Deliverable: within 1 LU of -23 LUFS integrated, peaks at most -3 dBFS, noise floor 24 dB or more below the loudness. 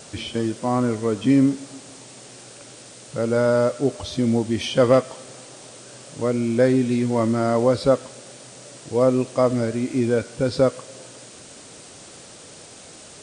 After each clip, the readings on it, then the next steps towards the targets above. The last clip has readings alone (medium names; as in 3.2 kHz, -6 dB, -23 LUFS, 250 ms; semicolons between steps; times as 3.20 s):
noise floor -44 dBFS; noise floor target -45 dBFS; loudness -21.0 LUFS; peak level -5.0 dBFS; loudness target -23.0 LUFS
-> noise reduction 6 dB, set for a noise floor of -44 dBFS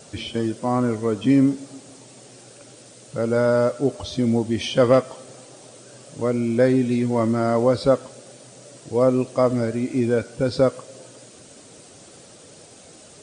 noise floor -47 dBFS; loudness -21.0 LUFS; peak level -5.0 dBFS; loudness target -23.0 LUFS
-> trim -2 dB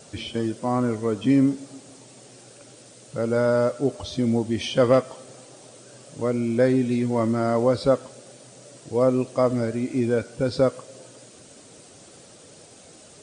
loudness -23.0 LUFS; peak level -7.0 dBFS; noise floor -49 dBFS